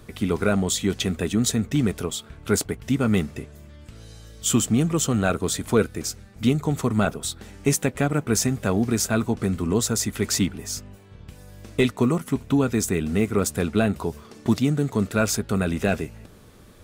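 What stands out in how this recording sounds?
noise floor -48 dBFS; spectral tilt -5.0 dB/oct

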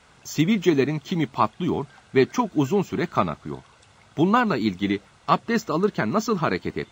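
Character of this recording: noise floor -55 dBFS; spectral tilt -5.5 dB/oct

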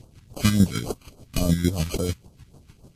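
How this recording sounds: aliases and images of a low sample rate 1800 Hz, jitter 0%; chopped level 6.7 Hz, depth 60%, duty 30%; phasing stages 2, 3.6 Hz, lowest notch 550–2000 Hz; Vorbis

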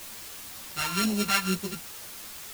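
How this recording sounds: a buzz of ramps at a fixed pitch in blocks of 32 samples; phasing stages 2, 2 Hz, lowest notch 370–1400 Hz; a quantiser's noise floor 8-bit, dither triangular; a shimmering, thickened sound

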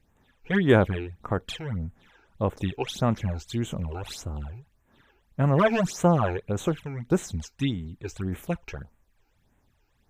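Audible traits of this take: phasing stages 12, 1.7 Hz, lowest notch 180–4900 Hz

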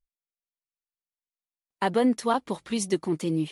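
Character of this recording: noise floor -97 dBFS; spectral tilt -5.0 dB/oct

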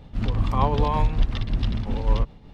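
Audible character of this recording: tremolo triangle 5.3 Hz, depth 50%

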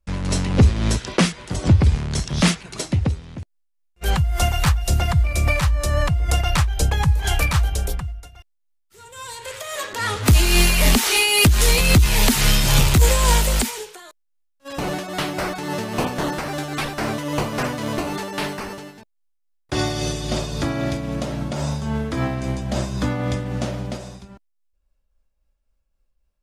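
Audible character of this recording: tremolo triangle 3.7 Hz, depth 45%

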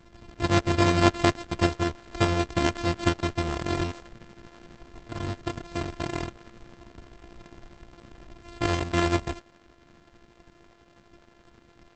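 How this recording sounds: a buzz of ramps at a fixed pitch in blocks of 128 samples; tremolo saw up 12 Hz, depth 45%; Opus

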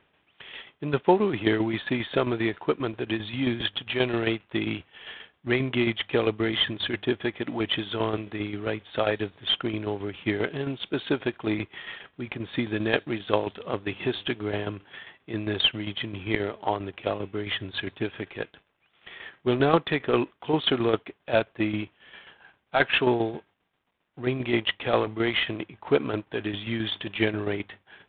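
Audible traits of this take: tremolo saw down 7.5 Hz, depth 60%; IMA ADPCM

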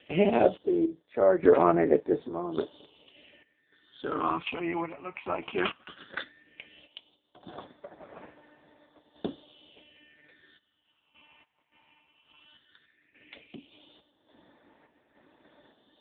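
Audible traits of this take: a quantiser's noise floor 10-bit, dither none; random-step tremolo, depth 90%; phasing stages 8, 0.15 Hz, lowest notch 470–3100 Hz; AMR-NB

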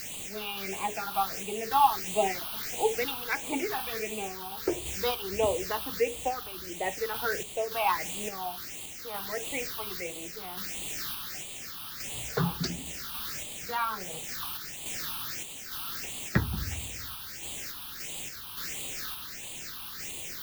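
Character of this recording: a quantiser's noise floor 6-bit, dither triangular; random-step tremolo; phasing stages 6, 1.5 Hz, lowest notch 520–1500 Hz

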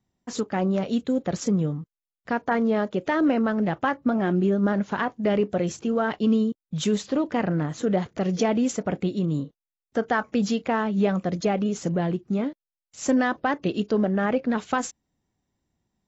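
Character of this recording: noise floor -91 dBFS; spectral tilt -6.0 dB/oct

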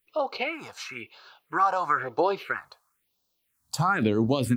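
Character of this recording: a quantiser's noise floor 12-bit, dither triangular; phasing stages 4, 1 Hz, lowest notch 360–2100 Hz

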